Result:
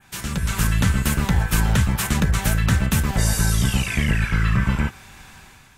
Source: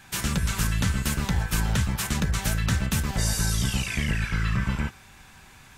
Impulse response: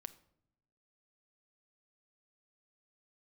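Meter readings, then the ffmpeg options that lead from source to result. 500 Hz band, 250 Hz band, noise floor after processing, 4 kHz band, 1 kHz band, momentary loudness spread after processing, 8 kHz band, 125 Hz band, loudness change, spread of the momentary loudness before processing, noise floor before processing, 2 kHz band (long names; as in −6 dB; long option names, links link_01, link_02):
+5.5 dB, +6.0 dB, −49 dBFS, +2.5 dB, +5.5 dB, 4 LU, +3.0 dB, +6.0 dB, +5.5 dB, 2 LU, −51 dBFS, +5.0 dB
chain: -af "adynamicequalizer=threshold=0.00501:dfrequency=5000:dqfactor=0.96:tfrequency=5000:tqfactor=0.96:attack=5:release=100:ratio=0.375:range=3:mode=cutabove:tftype=bell,dynaudnorm=framelen=130:gausssize=7:maxgain=9dB,volume=-2.5dB"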